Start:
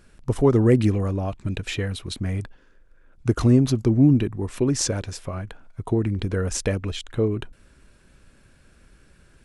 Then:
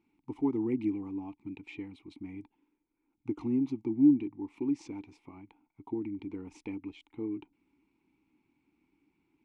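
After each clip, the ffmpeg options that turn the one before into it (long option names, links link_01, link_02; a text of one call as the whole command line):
ffmpeg -i in.wav -filter_complex "[0:a]asplit=3[link_01][link_02][link_03];[link_01]bandpass=frequency=300:width_type=q:width=8,volume=0dB[link_04];[link_02]bandpass=frequency=870:width_type=q:width=8,volume=-6dB[link_05];[link_03]bandpass=frequency=2240:width_type=q:width=8,volume=-9dB[link_06];[link_04][link_05][link_06]amix=inputs=3:normalize=0,volume=-2dB" out.wav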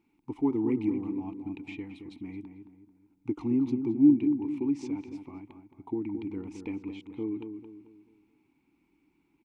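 ffmpeg -i in.wav -filter_complex "[0:a]asplit=2[link_01][link_02];[link_02]adelay=220,lowpass=frequency=1500:poles=1,volume=-7.5dB,asplit=2[link_03][link_04];[link_04]adelay=220,lowpass=frequency=1500:poles=1,volume=0.42,asplit=2[link_05][link_06];[link_06]adelay=220,lowpass=frequency=1500:poles=1,volume=0.42,asplit=2[link_07][link_08];[link_08]adelay=220,lowpass=frequency=1500:poles=1,volume=0.42,asplit=2[link_09][link_10];[link_10]adelay=220,lowpass=frequency=1500:poles=1,volume=0.42[link_11];[link_01][link_03][link_05][link_07][link_09][link_11]amix=inputs=6:normalize=0,volume=2.5dB" out.wav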